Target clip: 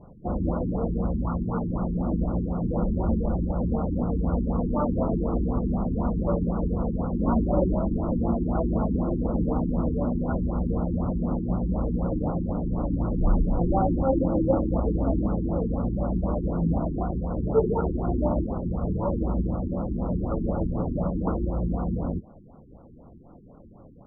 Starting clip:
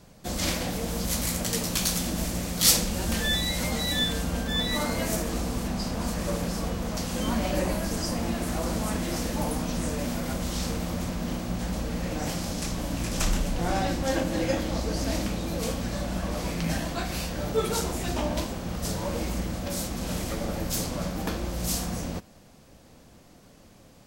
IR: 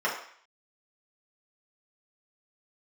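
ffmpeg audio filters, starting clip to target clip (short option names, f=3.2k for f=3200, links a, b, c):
-filter_complex "[0:a]asettb=1/sr,asplit=3[a][b][c];[a]atrim=end=1.184[d];[b]atrim=start=1.18:end=1.74,asetpts=PTS-STARTPTS,afade=t=in:d=0.004:c=qsin,afade=t=out:st=0.556:d=0.004:c=qsin,equalizer=f=500:t=o:w=1:g=-6,equalizer=f=1k:t=o:w=1:g=5,equalizer=f=2k:t=o:w=1:g=10[e];[c]atrim=start=1.736[f];[d][e]acrossfade=d=0.004:c1=hsin:c2=qsin[g];[g][f]acrossfade=d=0.004:c1=qsin:c2=hsin,afftfilt=real='re*lt(b*sr/1024,410*pow(1500/410,0.5+0.5*sin(2*PI*4*pts/sr)))':imag='im*lt(b*sr/1024,410*pow(1500/410,0.5+0.5*sin(2*PI*4*pts/sr)))':win_size=1024:overlap=0.75,volume=5dB"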